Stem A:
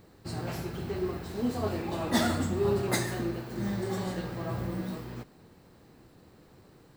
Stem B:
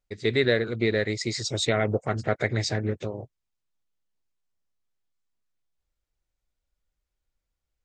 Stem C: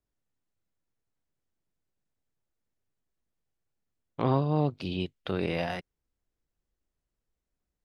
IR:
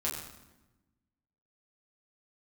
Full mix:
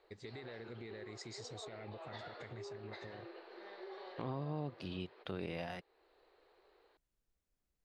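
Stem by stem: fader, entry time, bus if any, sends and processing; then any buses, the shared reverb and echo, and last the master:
-7.5 dB, 0.00 s, bus A, no send, Chebyshev band-pass 390–4300 Hz, order 4
-11.0 dB, 0.00 s, bus A, no send, peak limiter -20.5 dBFS, peak gain reduction 11 dB
-3.0 dB, 0.00 s, no bus, no send, peak limiter -16.5 dBFS, peak gain reduction 4.5 dB
bus A: 0.0 dB, compression, threshold -40 dBFS, peak gain reduction 9 dB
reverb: none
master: compression 1.5:1, threshold -53 dBFS, peak gain reduction 10 dB

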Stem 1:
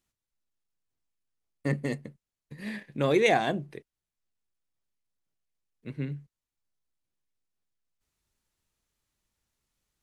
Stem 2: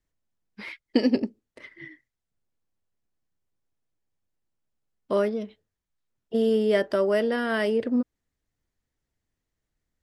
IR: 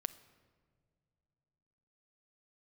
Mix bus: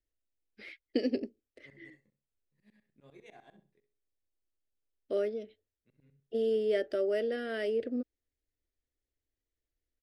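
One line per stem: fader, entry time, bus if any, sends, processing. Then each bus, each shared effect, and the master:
-18.5 dB, 0.00 s, no send, echo send -12.5 dB, chord resonator C#2 major, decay 0.25 s; tremolo saw up 10 Hz, depth 100%
-5.5 dB, 0.00 s, no send, no echo send, treble shelf 5.5 kHz -9 dB; static phaser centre 410 Hz, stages 4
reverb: none
echo: feedback delay 65 ms, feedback 25%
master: none

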